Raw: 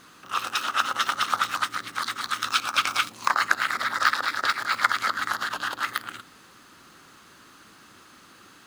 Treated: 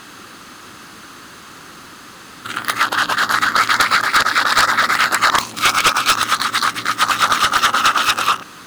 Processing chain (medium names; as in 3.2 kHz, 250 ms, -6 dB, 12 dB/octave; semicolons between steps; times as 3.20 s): reverse the whole clip; sine folder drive 15 dB, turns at -1.5 dBFS; trim -5.5 dB